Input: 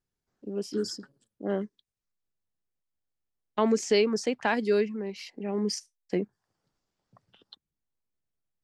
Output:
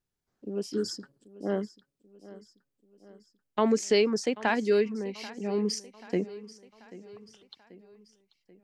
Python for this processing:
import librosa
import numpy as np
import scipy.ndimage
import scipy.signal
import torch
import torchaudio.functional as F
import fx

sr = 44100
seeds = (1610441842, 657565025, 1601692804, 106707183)

y = fx.echo_feedback(x, sr, ms=786, feedback_pct=52, wet_db=-18.5)